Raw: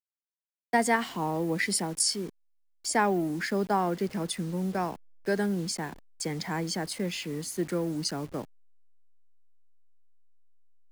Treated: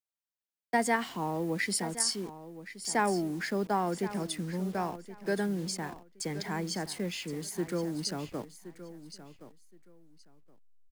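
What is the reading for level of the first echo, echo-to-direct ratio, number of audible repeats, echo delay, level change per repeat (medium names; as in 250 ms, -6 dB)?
-14.0 dB, -14.0 dB, 2, 1071 ms, -14.0 dB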